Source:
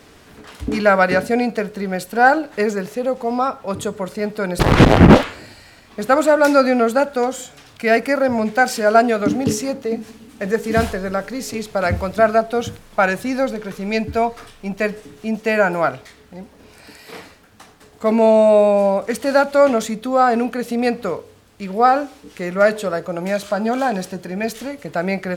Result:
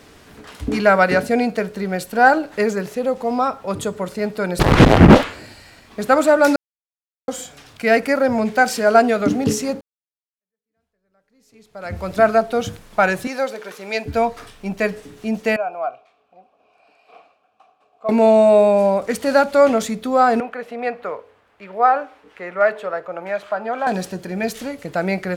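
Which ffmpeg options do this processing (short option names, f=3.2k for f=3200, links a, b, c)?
-filter_complex "[0:a]asettb=1/sr,asplit=3[a][b][c];[a]atrim=end=13.274[d];[b]atrim=start=13.27:end=14.06,asetpts=PTS-STARTPTS,afade=t=in:d=0.004:c=qsin,afade=t=out:st=0.786:d=0.004:c=qsin,highpass=460[e];[c]atrim=start=14.056[f];[d][e]acrossfade=d=0.004:c1=hsin:c2=qsin[g];[g][f]acrossfade=d=0.004:c1=qsin:c2=hsin,asettb=1/sr,asplit=3[h][i][j];[h]atrim=end=15.564[k];[i]atrim=start=15.56:end=18.09,asetpts=PTS-STARTPTS,afade=t=in:d=0.004:c=qsin,afade=t=out:st=2.526:d=0.004:c=qsin,asplit=3[l][m][n];[l]bandpass=f=730:t=q:w=8,volume=0dB[o];[m]bandpass=f=1.09k:t=q:w=8,volume=-6dB[p];[n]bandpass=f=2.44k:t=q:w=8,volume=-9dB[q];[o][p][q]amix=inputs=3:normalize=0[r];[j]atrim=start=18.086[s];[k][r]acrossfade=d=0.004:c1=hsin:c2=qsin[t];[t][s]acrossfade=d=0.004:c1=qsin:c2=hsin,asettb=1/sr,asplit=3[u][v][w];[u]atrim=end=20.404[x];[v]atrim=start=20.4:end=23.87,asetpts=PTS-STARTPTS,afade=t=in:d=0.004:c=qsin,afade=t=out:st=3.466:d=0.004:c=qsin,acrossover=split=480 2700:gain=0.158 1 0.1[y][z][aa];[y][z][aa]amix=inputs=3:normalize=0[ab];[w]atrim=start=23.866[ac];[x][ab]acrossfade=d=0.004:c1=hsin:c2=qsin[ad];[ad][ac]acrossfade=d=0.004:c1=qsin:c2=hsin,asplit=4[ae][af][ag][ah];[ae]atrim=end=6.56,asetpts=PTS-STARTPTS,afade=t=out:st=6.556:d=0.004:c=hsin[ai];[af]atrim=start=6.56:end=7.28,asetpts=PTS-STARTPTS,volume=0[aj];[ag]atrim=start=7.28:end=9.81,asetpts=PTS-STARTPTS,afade=t=in:d=0.004:c=hsin,afade=t=out:st=2.526:d=0.004:c=hsin[ak];[ah]atrim=start=9.81,asetpts=PTS-STARTPTS,afade=t=in:d=2.32:c=exp[al];[ai][aj][ak][al]concat=n=4:v=0:a=1"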